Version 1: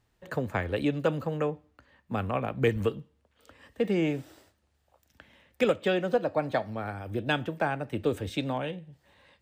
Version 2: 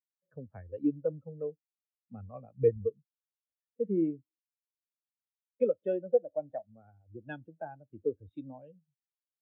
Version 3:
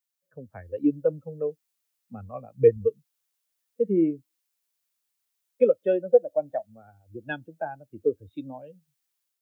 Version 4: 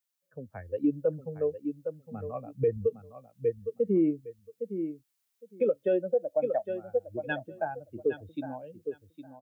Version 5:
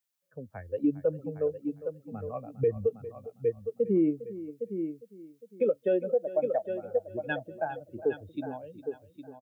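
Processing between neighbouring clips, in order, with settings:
every bin expanded away from the loudest bin 2.5 to 1
spectral tilt +2 dB per octave; automatic gain control gain up to 6.5 dB; level +3.5 dB
repeating echo 810 ms, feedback 17%, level −11 dB; brickwall limiter −17.5 dBFS, peak gain reduction 11 dB
single-tap delay 405 ms −15.5 dB

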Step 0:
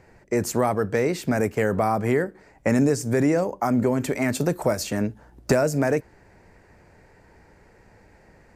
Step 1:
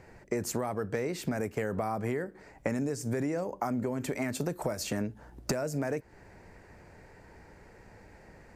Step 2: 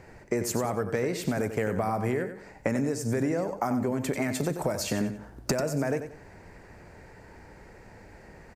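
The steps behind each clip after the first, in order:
downward compressor 6 to 1, threshold −29 dBFS, peak gain reduction 14 dB
repeating echo 92 ms, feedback 31%, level −9.5 dB; level +3.5 dB

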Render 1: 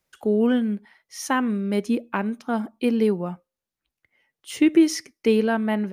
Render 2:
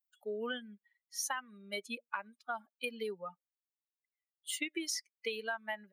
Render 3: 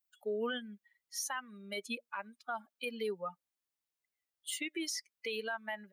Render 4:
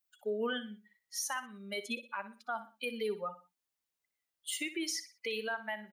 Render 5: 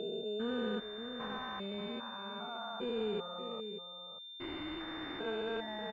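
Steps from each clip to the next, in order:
spectral dynamics exaggerated over time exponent 2; Bessel high-pass filter 1,300 Hz, order 2; downward compressor 12 to 1, threshold −38 dBFS, peak gain reduction 14 dB; level +4.5 dB
brickwall limiter −31.5 dBFS, peak gain reduction 9 dB; level +3.5 dB
repeating echo 61 ms, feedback 33%, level −13 dB; level +1.5 dB
spectrum averaged block by block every 400 ms; slap from a distant wall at 100 metres, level −8 dB; switching amplifier with a slow clock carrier 3,600 Hz; level +5.5 dB

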